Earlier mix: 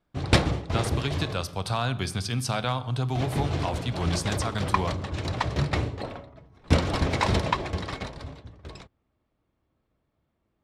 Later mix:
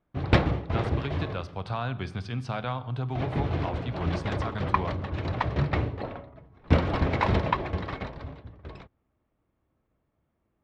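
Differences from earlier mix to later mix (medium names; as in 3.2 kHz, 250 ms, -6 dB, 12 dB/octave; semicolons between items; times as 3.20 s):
speech -3.5 dB; master: add low-pass 2.6 kHz 12 dB/octave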